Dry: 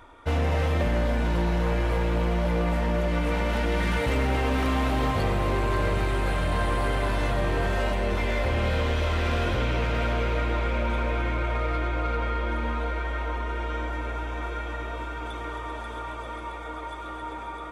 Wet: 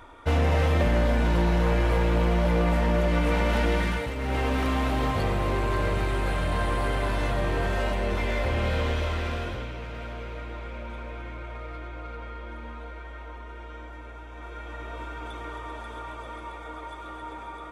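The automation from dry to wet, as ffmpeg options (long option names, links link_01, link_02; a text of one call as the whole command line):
ffmpeg -i in.wav -af "volume=18dB,afade=type=out:start_time=3.68:duration=0.47:silence=0.281838,afade=type=in:start_time=4.15:duration=0.24:silence=0.398107,afade=type=out:start_time=8.88:duration=0.85:silence=0.316228,afade=type=in:start_time=14.29:duration=0.75:silence=0.398107" out.wav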